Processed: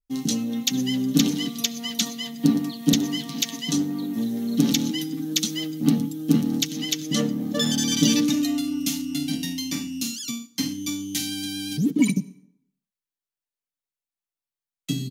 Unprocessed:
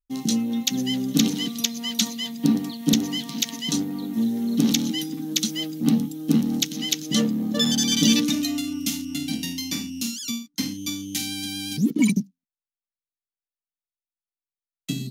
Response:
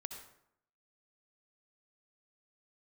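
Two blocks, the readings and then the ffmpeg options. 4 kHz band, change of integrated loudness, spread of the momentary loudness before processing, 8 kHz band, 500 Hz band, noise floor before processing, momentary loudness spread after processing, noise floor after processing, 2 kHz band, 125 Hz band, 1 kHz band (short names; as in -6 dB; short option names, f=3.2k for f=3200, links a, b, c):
-1.5 dB, -0.5 dB, 8 LU, -0.5 dB, +1.0 dB, under -85 dBFS, 8 LU, under -85 dBFS, -1.0 dB, +1.0 dB, -0.5 dB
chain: -filter_complex "[0:a]aecho=1:1:7:0.42,asplit=2[a][b];[1:a]atrim=start_sample=2205[c];[b][c]afir=irnorm=-1:irlink=0,volume=-9dB[d];[a][d]amix=inputs=2:normalize=0,adynamicequalizer=threshold=0.0178:dfrequency=2000:dqfactor=0.7:tfrequency=2000:tqfactor=0.7:attack=5:release=100:ratio=0.375:range=1.5:mode=cutabove:tftype=highshelf,volume=-2dB"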